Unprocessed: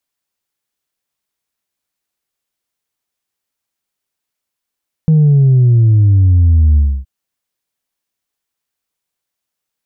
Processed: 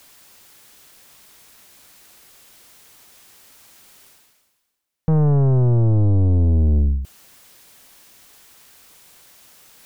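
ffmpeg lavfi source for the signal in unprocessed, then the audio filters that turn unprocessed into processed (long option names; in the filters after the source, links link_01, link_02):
-f lavfi -i "aevalsrc='0.501*clip((1.97-t)/0.28,0,1)*tanh(1.12*sin(2*PI*160*1.97/log(65/160)*(exp(log(65/160)*t/1.97)-1)))/tanh(1.12)':duration=1.97:sample_rate=44100"
-af "areverse,acompressor=mode=upward:threshold=-22dB:ratio=2.5,areverse,aeval=exprs='(tanh(5.01*val(0)+0.45)-tanh(0.45))/5.01':channel_layout=same"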